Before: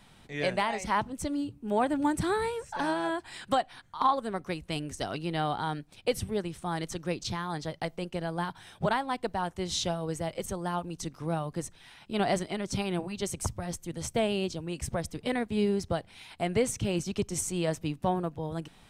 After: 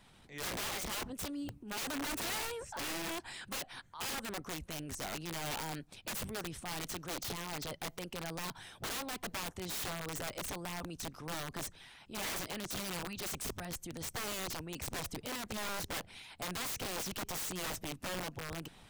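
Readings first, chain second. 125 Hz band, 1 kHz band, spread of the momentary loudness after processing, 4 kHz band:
−11.0 dB, −12.0 dB, 6 LU, −2.0 dB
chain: transient designer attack −6 dB, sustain +4 dB
harmonic and percussive parts rebalanced harmonic −7 dB
wrap-around overflow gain 32 dB
level −1.5 dB

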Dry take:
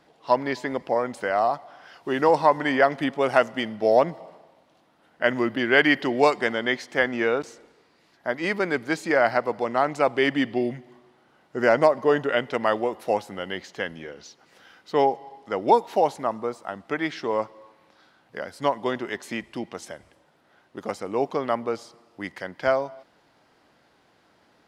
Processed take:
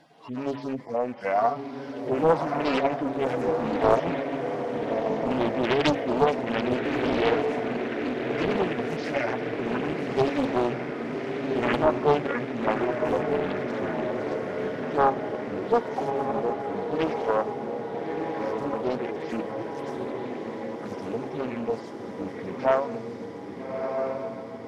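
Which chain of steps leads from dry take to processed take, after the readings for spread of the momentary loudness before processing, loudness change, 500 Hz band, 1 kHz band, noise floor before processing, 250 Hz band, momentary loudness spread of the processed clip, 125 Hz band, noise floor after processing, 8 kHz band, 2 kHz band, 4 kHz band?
17 LU, −3.0 dB, −1.5 dB, −2.5 dB, −62 dBFS, +1.0 dB, 10 LU, +3.5 dB, −38 dBFS, can't be measured, −7.0 dB, −4.0 dB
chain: harmonic-percussive split with one part muted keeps harmonic
hum removal 68.98 Hz, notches 5
in parallel at −1 dB: downward compressor, threshold −40 dBFS, peak gain reduction 22.5 dB
on the sum: feedback delay with all-pass diffusion 1,270 ms, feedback 67%, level −4 dB
highs frequency-modulated by the lows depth 0.78 ms

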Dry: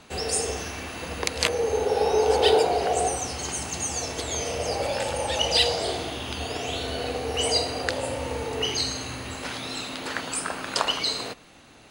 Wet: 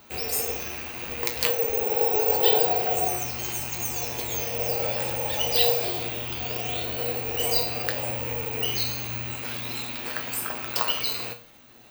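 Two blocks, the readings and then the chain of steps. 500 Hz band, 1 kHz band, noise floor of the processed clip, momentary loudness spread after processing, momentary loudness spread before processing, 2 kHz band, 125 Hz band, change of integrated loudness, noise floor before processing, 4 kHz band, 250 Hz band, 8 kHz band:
−3.5 dB, −3.5 dB, −48 dBFS, 10 LU, 11 LU, −1.5 dB, 0.0 dB, +1.0 dB, −51 dBFS, −3.5 dB, −4.0 dB, −3.5 dB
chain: loose part that buzzes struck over −44 dBFS, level −24 dBFS
tuned comb filter 120 Hz, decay 0.35 s, harmonics all, mix 80%
bad sample-rate conversion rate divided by 2×, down none, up zero stuff
level +5 dB

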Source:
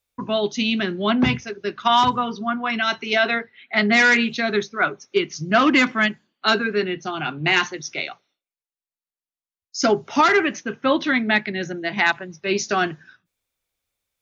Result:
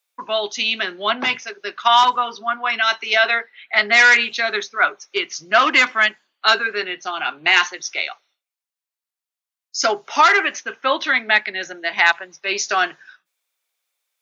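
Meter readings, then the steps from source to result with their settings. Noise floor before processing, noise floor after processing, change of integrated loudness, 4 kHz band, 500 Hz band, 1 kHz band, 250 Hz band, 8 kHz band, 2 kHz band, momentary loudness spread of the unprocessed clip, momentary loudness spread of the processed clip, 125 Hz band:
below −85 dBFS, below −85 dBFS, +3.0 dB, +4.5 dB, −2.0 dB, +3.5 dB, −12.5 dB, can't be measured, +4.5 dB, 10 LU, 11 LU, below −15 dB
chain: high-pass filter 700 Hz 12 dB per octave
level +4.5 dB

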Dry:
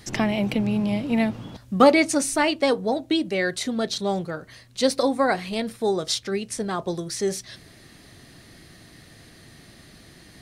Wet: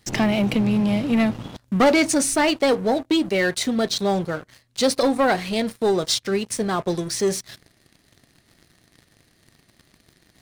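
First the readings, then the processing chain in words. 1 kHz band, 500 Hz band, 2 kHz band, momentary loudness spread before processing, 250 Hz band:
+1.0 dB, +2.0 dB, +2.0 dB, 10 LU, +3.0 dB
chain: leveller curve on the samples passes 3
level −7 dB

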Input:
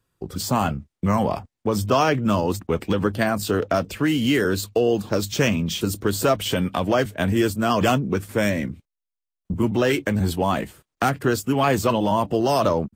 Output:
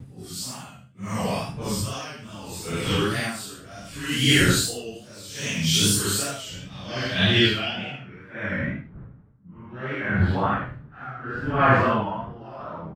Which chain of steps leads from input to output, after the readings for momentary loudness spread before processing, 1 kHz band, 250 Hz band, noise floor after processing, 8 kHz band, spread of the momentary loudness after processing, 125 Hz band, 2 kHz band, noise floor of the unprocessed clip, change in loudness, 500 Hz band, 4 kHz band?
6 LU, −4.5 dB, −5.5 dB, −47 dBFS, +4.5 dB, 20 LU, −1.5 dB, +2.0 dB, −85 dBFS, −1.5 dB, −8.5 dB, +5.5 dB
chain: random phases in long frames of 200 ms
wind on the microphone 120 Hz −30 dBFS
spectral tilt +3.5 dB per octave
healed spectral selection 0:07.65–0:08.25, 930–1,900 Hz both
graphic EQ with 10 bands 125 Hz +11 dB, 500 Hz −4 dB, 1,000 Hz −5 dB, 8,000 Hz −10 dB
on a send: single-tap delay 77 ms −7 dB
on the sum: reverb whose tail is shaped and stops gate 120 ms flat, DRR 10 dB
tape wow and flutter 67 cents
low-pass filter sweep 8,700 Hz → 1,400 Hz, 0:06.27–0:08.52
tremolo with a sine in dB 0.68 Hz, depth 21 dB
level +4 dB

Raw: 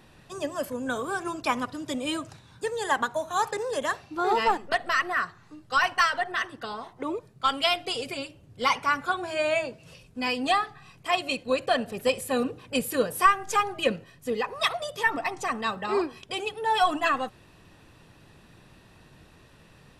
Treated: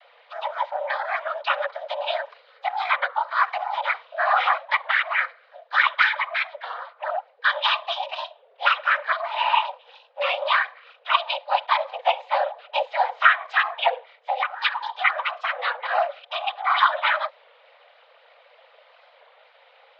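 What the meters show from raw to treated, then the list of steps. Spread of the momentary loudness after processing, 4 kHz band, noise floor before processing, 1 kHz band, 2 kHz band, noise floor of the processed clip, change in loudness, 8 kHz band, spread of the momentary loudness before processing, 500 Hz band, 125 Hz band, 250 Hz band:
11 LU, +3.5 dB, −55 dBFS, +4.0 dB, +6.5 dB, −57 dBFS, +4.0 dB, below −20 dB, 11 LU, −1.0 dB, below −40 dB, below −40 dB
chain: cochlear-implant simulation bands 16
single-sideband voice off tune +320 Hz 210–3,600 Hz
wow of a warped record 33 1/3 rpm, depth 100 cents
level +4 dB

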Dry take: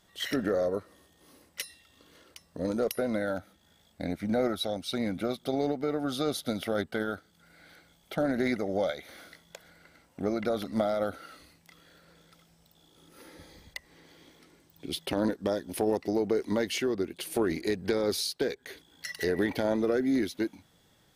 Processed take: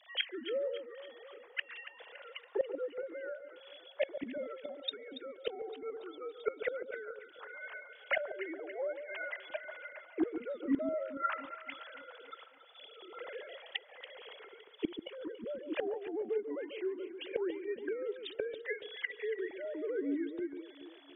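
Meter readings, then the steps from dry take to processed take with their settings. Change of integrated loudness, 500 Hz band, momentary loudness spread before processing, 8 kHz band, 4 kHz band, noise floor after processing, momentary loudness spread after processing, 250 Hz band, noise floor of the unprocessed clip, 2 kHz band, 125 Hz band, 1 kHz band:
−8.5 dB, −7.0 dB, 14 LU, below −35 dB, −6.0 dB, −58 dBFS, 14 LU, −10.0 dB, −65 dBFS, −2.5 dB, −25.5 dB, −7.5 dB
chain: three sine waves on the formant tracks
gate with flip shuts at −34 dBFS, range −25 dB
delay that swaps between a low-pass and a high-pass 141 ms, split 1,200 Hz, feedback 70%, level −9 dB
level +14 dB

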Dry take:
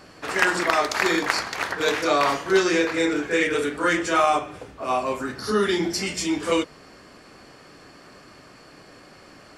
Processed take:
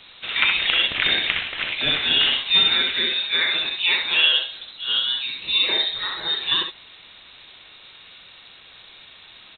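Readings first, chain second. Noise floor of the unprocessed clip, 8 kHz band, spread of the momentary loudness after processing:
−49 dBFS, below −40 dB, 8 LU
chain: ambience of single reflections 63 ms −5 dB, 74 ms −11 dB
bit-depth reduction 8 bits, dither triangular
voice inversion scrambler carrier 4,000 Hz

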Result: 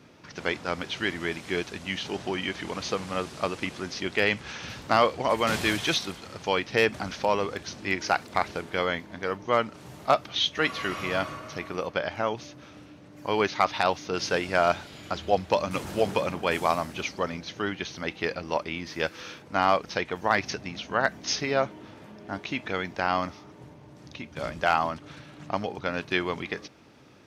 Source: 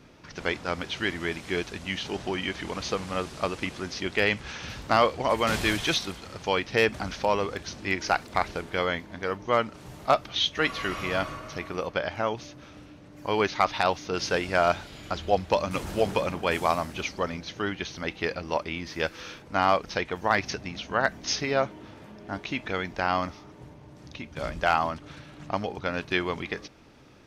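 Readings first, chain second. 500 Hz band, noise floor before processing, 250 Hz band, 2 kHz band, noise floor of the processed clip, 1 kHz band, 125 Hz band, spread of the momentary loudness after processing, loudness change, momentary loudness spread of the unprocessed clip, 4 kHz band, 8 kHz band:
0.0 dB, −49 dBFS, 0.0 dB, 0.0 dB, −50 dBFS, 0.0 dB, −1.5 dB, 12 LU, 0.0 dB, 12 LU, 0.0 dB, 0.0 dB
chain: high-pass filter 90 Hz

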